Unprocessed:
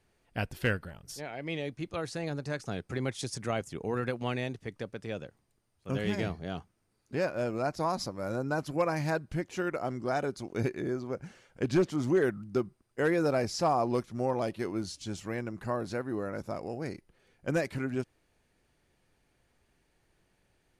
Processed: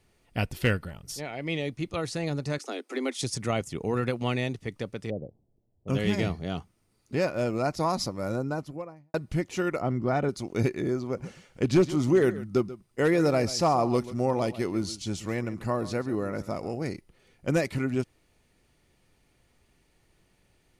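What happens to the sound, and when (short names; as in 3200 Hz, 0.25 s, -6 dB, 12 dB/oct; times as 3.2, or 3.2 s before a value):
2.58–3.21 steep high-pass 240 Hz 96 dB/oct
5.1–5.88 steep low-pass 730 Hz
8.14–9.14 studio fade out
9.81–10.29 tone controls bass +5 dB, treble -15 dB
11.04–16.83 echo 0.136 s -16 dB
whole clip: bell 740 Hz -3 dB 2.1 oct; notch 1600 Hz, Q 8.4; gain +6 dB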